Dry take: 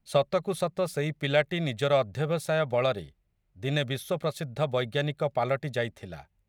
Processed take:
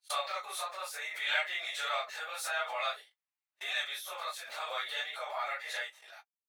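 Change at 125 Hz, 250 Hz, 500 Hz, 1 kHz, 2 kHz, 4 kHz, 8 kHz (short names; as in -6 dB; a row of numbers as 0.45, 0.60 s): under -40 dB, under -40 dB, -17.0 dB, -3.5 dB, 0.0 dB, 0.0 dB, +1.5 dB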